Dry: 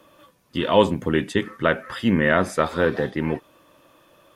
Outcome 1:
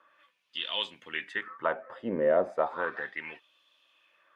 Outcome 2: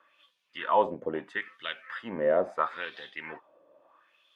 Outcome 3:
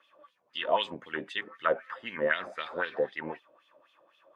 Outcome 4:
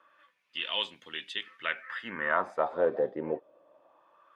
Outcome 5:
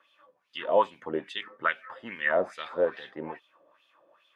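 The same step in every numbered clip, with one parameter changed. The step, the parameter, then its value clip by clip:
LFO wah, speed: 0.34, 0.75, 3.9, 0.23, 2.4 Hertz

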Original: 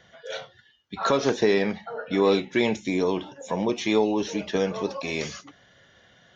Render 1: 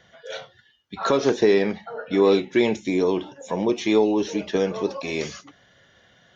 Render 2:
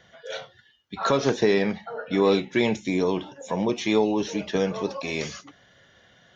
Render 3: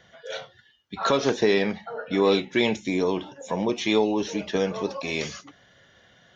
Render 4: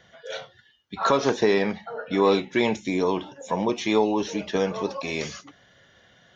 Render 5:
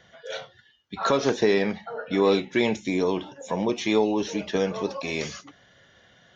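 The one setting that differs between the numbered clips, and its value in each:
dynamic equaliser, frequency: 360, 140, 3,200, 1,000, 10,000 Hertz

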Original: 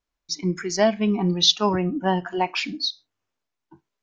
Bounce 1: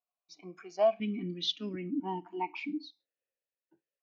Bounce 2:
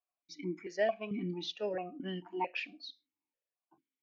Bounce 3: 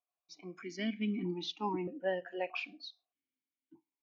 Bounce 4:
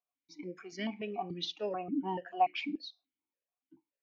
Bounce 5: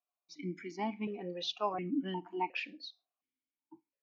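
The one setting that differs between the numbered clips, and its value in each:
formant filter that steps through the vowels, speed: 1, 4.5, 1.6, 6.9, 2.8 Hertz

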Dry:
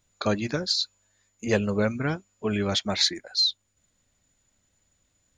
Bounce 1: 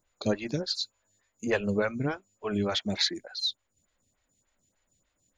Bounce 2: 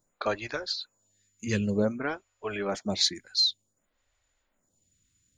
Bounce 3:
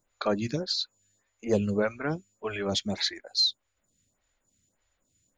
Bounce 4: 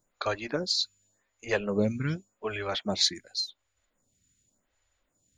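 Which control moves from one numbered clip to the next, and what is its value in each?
phaser with staggered stages, speed: 3.4, 0.54, 1.7, 0.88 Hertz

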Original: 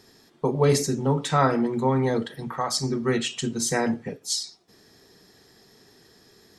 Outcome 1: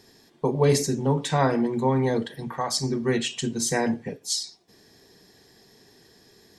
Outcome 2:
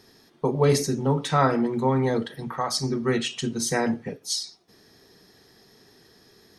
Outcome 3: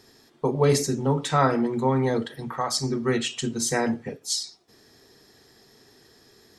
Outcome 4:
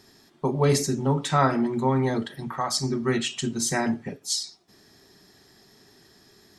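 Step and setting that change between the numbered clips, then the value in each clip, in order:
notch filter, centre frequency: 1,300, 7,500, 180, 480 Hertz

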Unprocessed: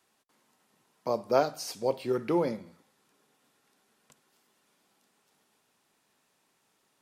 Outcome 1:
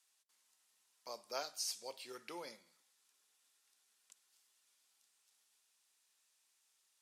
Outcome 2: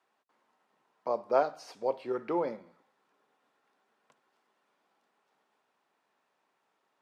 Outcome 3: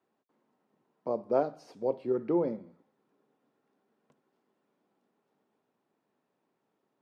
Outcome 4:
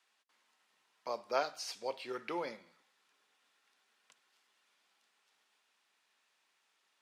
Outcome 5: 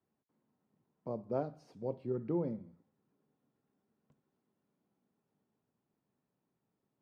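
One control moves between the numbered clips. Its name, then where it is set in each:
resonant band-pass, frequency: 7,600, 900, 330, 2,600, 110 Hertz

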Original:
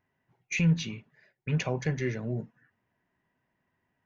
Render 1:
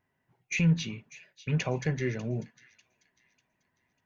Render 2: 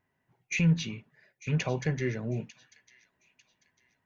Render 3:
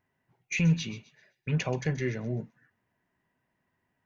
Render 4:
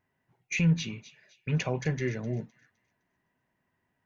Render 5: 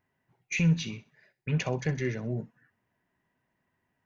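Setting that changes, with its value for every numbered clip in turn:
delay with a high-pass on its return, delay time: 595, 897, 129, 256, 64 milliseconds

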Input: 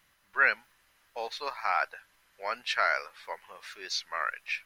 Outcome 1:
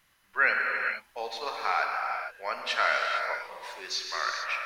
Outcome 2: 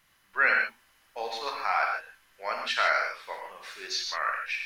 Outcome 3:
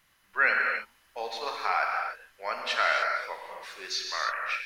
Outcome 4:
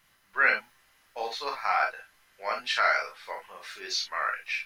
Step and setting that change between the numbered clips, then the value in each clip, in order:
reverb whose tail is shaped and stops, gate: 490, 180, 330, 80 milliseconds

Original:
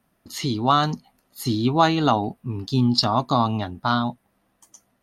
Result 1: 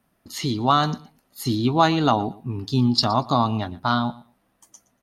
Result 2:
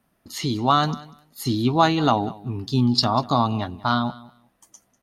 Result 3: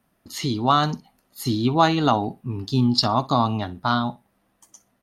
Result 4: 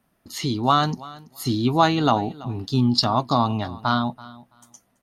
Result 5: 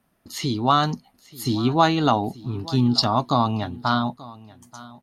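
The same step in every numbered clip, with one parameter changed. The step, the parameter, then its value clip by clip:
repeating echo, delay time: 118, 194, 61, 332, 884 milliseconds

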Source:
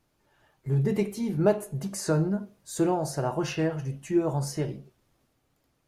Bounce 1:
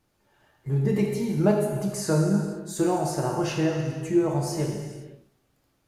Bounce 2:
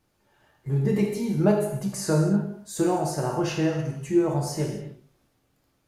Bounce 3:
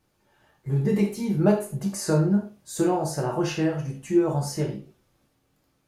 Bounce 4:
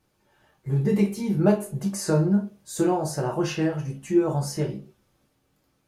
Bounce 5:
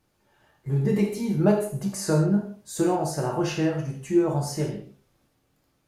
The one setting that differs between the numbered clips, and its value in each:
reverb whose tail is shaped and stops, gate: 540, 310, 130, 80, 200 milliseconds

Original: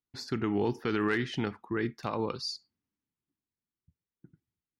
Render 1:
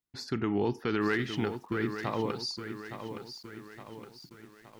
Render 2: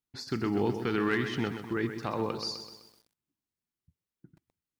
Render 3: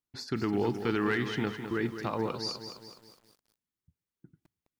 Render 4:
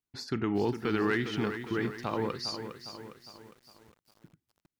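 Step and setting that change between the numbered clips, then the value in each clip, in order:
feedback echo at a low word length, delay time: 866, 127, 209, 407 milliseconds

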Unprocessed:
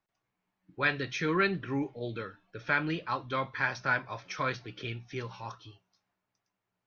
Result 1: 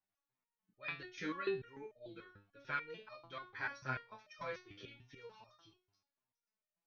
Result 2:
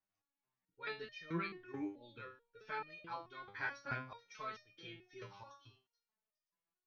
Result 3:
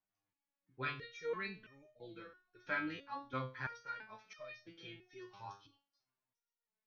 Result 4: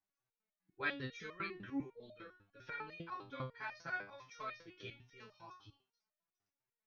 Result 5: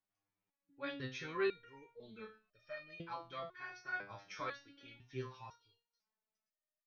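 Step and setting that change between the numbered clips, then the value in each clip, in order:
step-sequenced resonator, speed: 6.8, 4.6, 3, 10, 2 Hertz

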